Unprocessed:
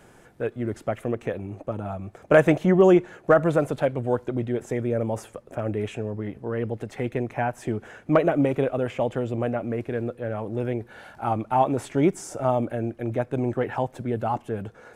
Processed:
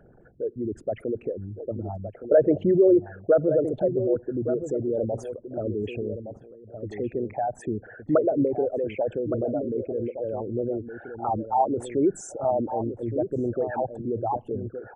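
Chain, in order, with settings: resonances exaggerated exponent 3; 6.16–6.83 s: level held to a coarse grid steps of 23 dB; echo from a far wall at 200 m, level -9 dB; trim -1.5 dB

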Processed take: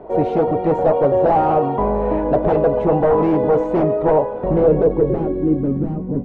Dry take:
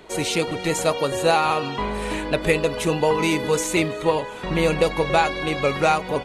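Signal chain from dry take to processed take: de-hum 182.1 Hz, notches 15; wavefolder -18 dBFS; low-pass sweep 700 Hz -> 250 Hz, 4.22–5.83 s; trim +6.5 dB

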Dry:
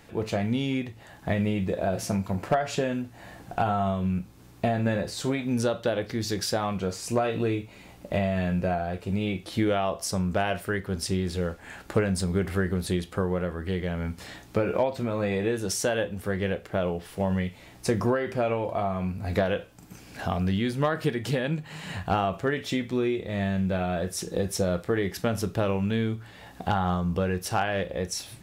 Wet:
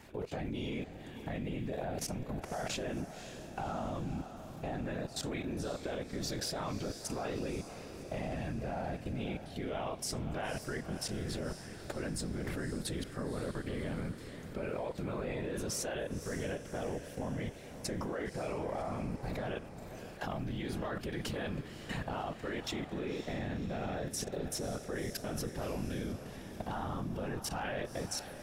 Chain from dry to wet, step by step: whisper effect; level held to a coarse grid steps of 18 dB; echo that smears into a reverb 548 ms, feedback 55%, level -10.5 dB; trim -1.5 dB

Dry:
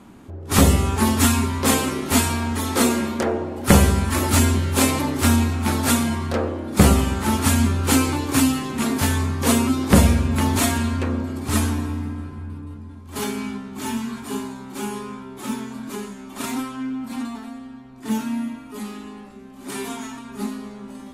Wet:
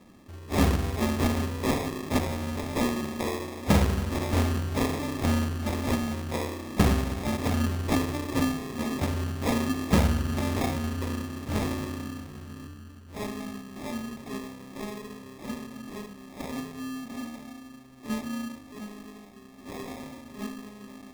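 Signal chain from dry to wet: 11.54–12.68 s: flutter echo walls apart 3.3 m, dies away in 0.45 s; sample-and-hold 30×; trim -8 dB

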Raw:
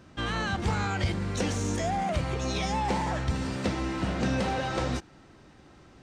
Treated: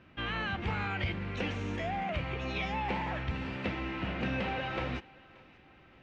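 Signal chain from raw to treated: resonant low-pass 2.6 kHz, resonance Q 2.7; on a send: thinning echo 579 ms, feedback 44%, level -22 dB; on the sum: trim -6.5 dB

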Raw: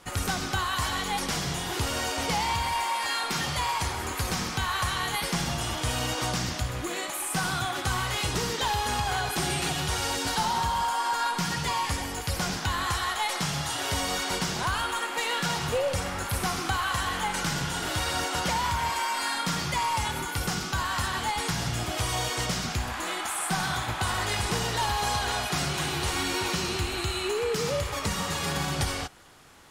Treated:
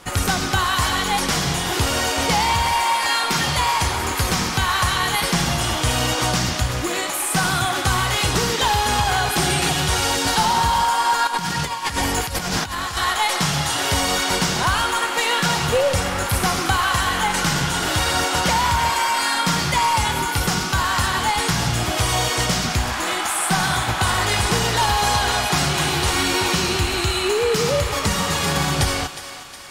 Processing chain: 11.27–12.97 s: compressor with a negative ratio -32 dBFS, ratio -0.5; thinning echo 363 ms, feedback 58%, high-pass 600 Hz, level -12 dB; trim +8.5 dB

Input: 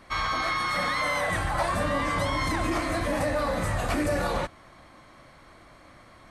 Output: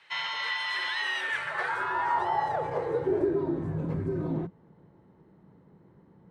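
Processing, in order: frequency shift -200 Hz; band-pass sweep 2.7 kHz -> 220 Hz, 1.18–3.66 s; trim +5.5 dB

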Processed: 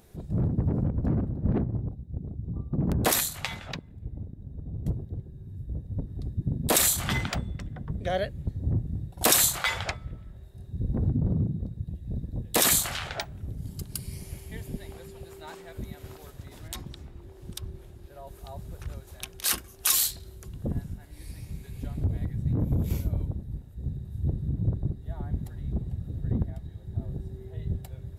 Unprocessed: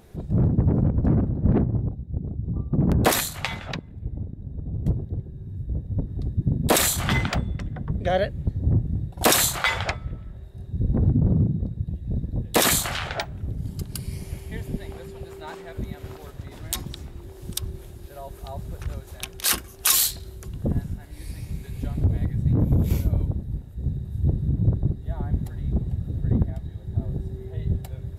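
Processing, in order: treble shelf 4.6 kHz +7.5 dB, from 16.68 s -6.5 dB, from 18.27 s +2.5 dB; trim -6 dB

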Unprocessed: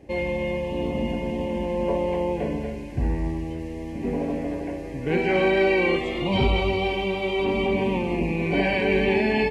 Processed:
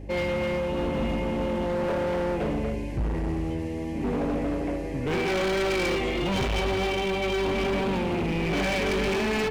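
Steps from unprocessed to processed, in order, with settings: overload inside the chain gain 26 dB; hum 50 Hz, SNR 13 dB; trim +2 dB

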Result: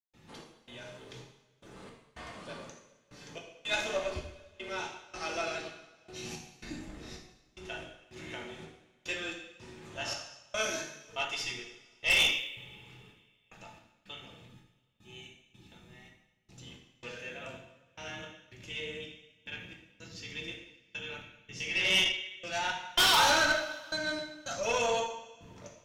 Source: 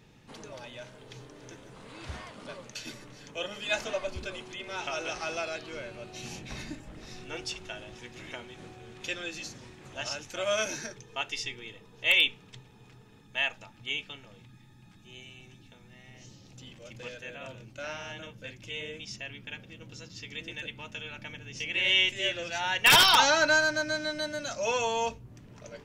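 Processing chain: trance gate ".xx..xxxx.." 111 bpm -60 dB; two-slope reverb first 0.77 s, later 2.2 s, from -18 dB, DRR -1 dB; valve stage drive 17 dB, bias 0.5; trim -1.5 dB

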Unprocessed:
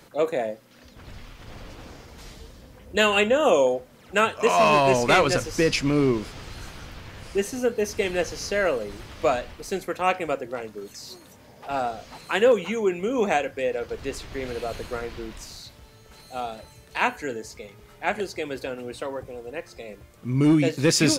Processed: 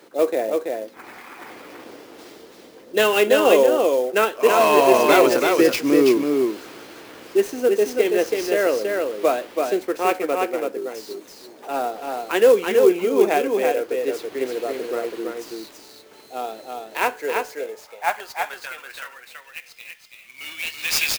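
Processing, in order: time-frequency box 0.94–1.50 s, 690–2600 Hz +10 dB; high-pass sweep 340 Hz -> 2.6 kHz, 16.84–19.55 s; on a send: delay 331 ms -4 dB; on the sum: sampling jitter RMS 0.021 ms

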